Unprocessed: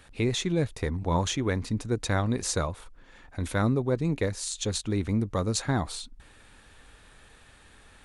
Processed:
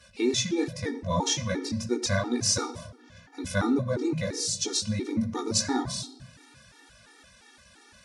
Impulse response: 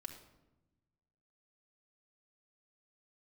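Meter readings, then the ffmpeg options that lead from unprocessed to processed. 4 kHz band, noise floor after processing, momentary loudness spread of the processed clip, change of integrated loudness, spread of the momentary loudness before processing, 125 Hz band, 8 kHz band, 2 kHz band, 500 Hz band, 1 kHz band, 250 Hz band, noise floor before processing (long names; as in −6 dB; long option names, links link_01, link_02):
+4.5 dB, −56 dBFS, 10 LU, +0.5 dB, 9 LU, −5.0 dB, +5.0 dB, +0.5 dB, −0.5 dB, −0.5 dB, +1.0 dB, −55 dBFS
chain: -filter_complex "[0:a]highpass=93,equalizer=frequency=5500:width_type=o:width=0.5:gain=12,flanger=delay=16:depth=5.7:speed=2.6,asplit=2[link_01][link_02];[1:a]atrim=start_sample=2205[link_03];[link_02][link_03]afir=irnorm=-1:irlink=0,volume=4.5dB[link_04];[link_01][link_04]amix=inputs=2:normalize=0,afftfilt=real='re*gt(sin(2*PI*2.9*pts/sr)*(1-2*mod(floor(b*sr/1024/240),2)),0)':imag='im*gt(sin(2*PI*2.9*pts/sr)*(1-2*mod(floor(b*sr/1024/240),2)),0)':win_size=1024:overlap=0.75"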